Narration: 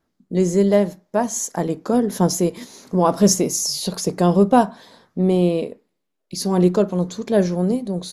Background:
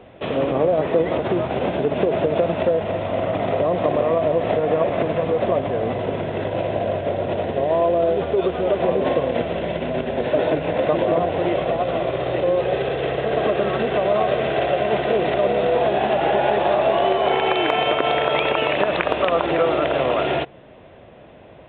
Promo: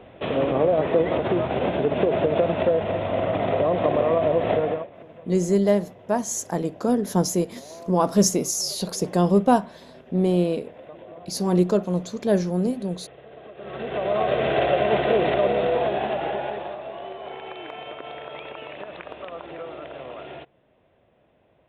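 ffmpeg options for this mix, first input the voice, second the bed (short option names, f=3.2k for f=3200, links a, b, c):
-filter_complex "[0:a]adelay=4950,volume=-3.5dB[a];[1:a]volume=21.5dB,afade=t=out:st=4.6:d=0.27:silence=0.0794328,afade=t=in:st=13.56:d=0.95:silence=0.0707946,afade=t=out:st=15.19:d=1.6:silence=0.141254[b];[a][b]amix=inputs=2:normalize=0"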